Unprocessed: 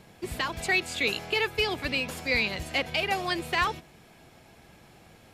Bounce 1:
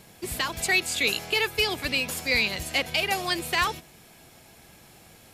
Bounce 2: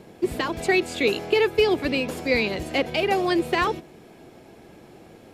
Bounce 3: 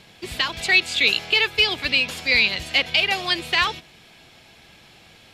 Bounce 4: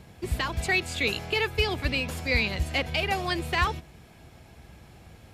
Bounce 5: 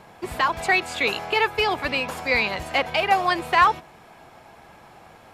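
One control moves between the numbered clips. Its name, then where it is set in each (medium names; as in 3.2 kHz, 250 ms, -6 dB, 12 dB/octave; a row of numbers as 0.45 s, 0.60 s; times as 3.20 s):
peaking EQ, frequency: 15 kHz, 360 Hz, 3.5 kHz, 67 Hz, 970 Hz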